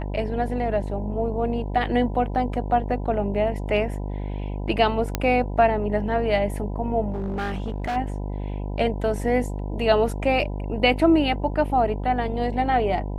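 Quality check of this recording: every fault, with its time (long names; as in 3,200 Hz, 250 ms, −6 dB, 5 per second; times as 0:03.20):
mains buzz 50 Hz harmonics 20 −29 dBFS
0:05.15: click −7 dBFS
0:07.12–0:07.97: clipping −23.5 dBFS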